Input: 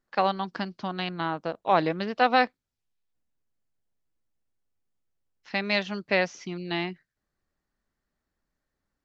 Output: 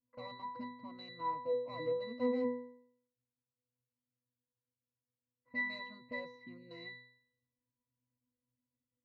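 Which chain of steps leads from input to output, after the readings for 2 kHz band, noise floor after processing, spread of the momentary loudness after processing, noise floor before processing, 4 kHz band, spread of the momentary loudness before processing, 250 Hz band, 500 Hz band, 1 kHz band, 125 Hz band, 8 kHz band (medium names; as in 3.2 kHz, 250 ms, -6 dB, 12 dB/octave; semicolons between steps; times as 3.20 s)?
-13.5 dB, under -85 dBFS, 14 LU, -85 dBFS, -17.5 dB, 10 LU, -10.5 dB, -9.5 dB, -17.0 dB, -20.0 dB, no reading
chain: overload inside the chain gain 26 dB; level-controlled noise filter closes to 900 Hz, open at -28.5 dBFS; pitch-class resonator B, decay 0.64 s; trim +12 dB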